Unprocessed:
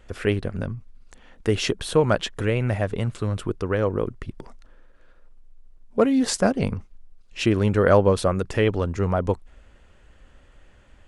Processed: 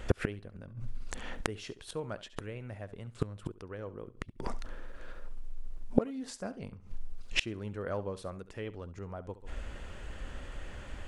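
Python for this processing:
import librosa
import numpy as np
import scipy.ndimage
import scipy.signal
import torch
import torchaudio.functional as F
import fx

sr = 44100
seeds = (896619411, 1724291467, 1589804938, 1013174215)

y = fx.room_flutter(x, sr, wall_m=11.7, rt60_s=0.26)
y = fx.gate_flip(y, sr, shuts_db=-21.0, range_db=-29)
y = F.gain(torch.from_numpy(y), 9.5).numpy()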